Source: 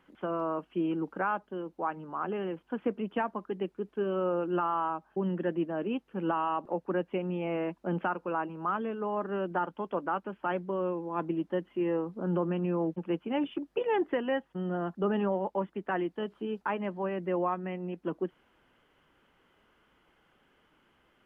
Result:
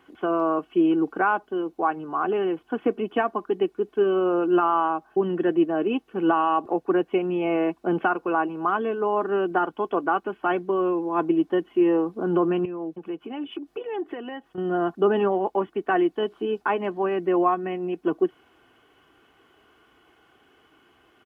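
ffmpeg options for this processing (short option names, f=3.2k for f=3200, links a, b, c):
-filter_complex "[0:a]asettb=1/sr,asplit=3[a][b][c];[a]atrim=end=12.654[d];[b]atrim=start=12.65:end=14.58,asetpts=PTS-STARTPTS,afade=t=in:d=0.004:c=qsin,afade=t=out:st=1.926:d=0.004:c=qsin,acompressor=threshold=-43dB:ratio=2.5:attack=3.2:release=140:knee=1:detection=peak[e];[c]atrim=start=14.576[f];[d][e]acrossfade=d=0.004:c1=hsin:c2=qsin[g];[g][f]acrossfade=d=0.004:c1=qsin:c2=hsin,highpass=83,equalizer=f=1.9k:w=4.2:g=-3,aecho=1:1:2.7:0.57,volume=7.5dB"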